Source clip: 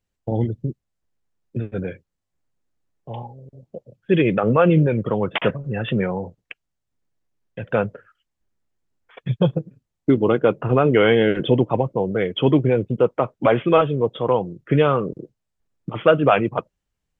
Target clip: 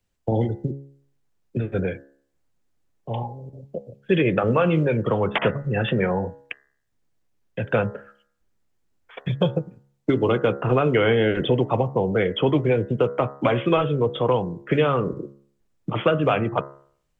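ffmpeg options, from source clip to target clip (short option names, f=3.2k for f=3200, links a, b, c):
-filter_complex "[0:a]acrossover=split=150|360|2100[a][b][c][d];[a]acompressor=threshold=-30dB:ratio=4[e];[b]acompressor=threshold=-34dB:ratio=4[f];[c]acompressor=threshold=-24dB:ratio=4[g];[d]acompressor=threshold=-36dB:ratio=4[h];[e][f][g][h]amix=inputs=4:normalize=0,bandreject=f=69.24:t=h:w=4,bandreject=f=138.48:t=h:w=4,bandreject=f=207.72:t=h:w=4,bandreject=f=276.96:t=h:w=4,bandreject=f=346.2:t=h:w=4,bandreject=f=415.44:t=h:w=4,bandreject=f=484.68:t=h:w=4,bandreject=f=553.92:t=h:w=4,bandreject=f=623.16:t=h:w=4,bandreject=f=692.4:t=h:w=4,bandreject=f=761.64:t=h:w=4,bandreject=f=830.88:t=h:w=4,bandreject=f=900.12:t=h:w=4,bandreject=f=969.36:t=h:w=4,bandreject=f=1.0386k:t=h:w=4,bandreject=f=1.10784k:t=h:w=4,bandreject=f=1.17708k:t=h:w=4,bandreject=f=1.24632k:t=h:w=4,bandreject=f=1.31556k:t=h:w=4,bandreject=f=1.3848k:t=h:w=4,bandreject=f=1.45404k:t=h:w=4,bandreject=f=1.52328k:t=h:w=4,bandreject=f=1.59252k:t=h:w=4,bandreject=f=1.66176k:t=h:w=4,bandreject=f=1.731k:t=h:w=4,bandreject=f=1.80024k:t=h:w=4,bandreject=f=1.86948k:t=h:w=4,bandreject=f=1.93872k:t=h:w=4,bandreject=f=2.00796k:t=h:w=4,volume=4.5dB"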